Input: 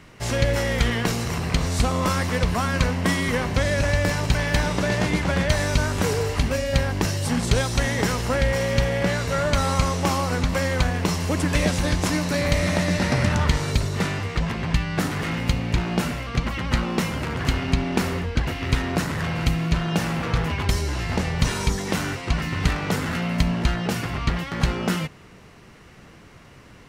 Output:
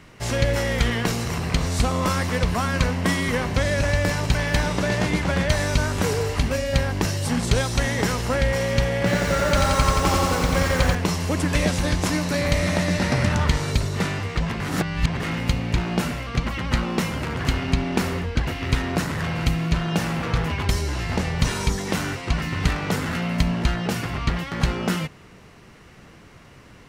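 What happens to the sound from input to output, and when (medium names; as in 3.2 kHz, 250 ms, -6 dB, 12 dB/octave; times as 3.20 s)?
8.97–10.95 s: bit-crushed delay 88 ms, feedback 80%, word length 7-bit, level -3 dB
14.60–15.20 s: reverse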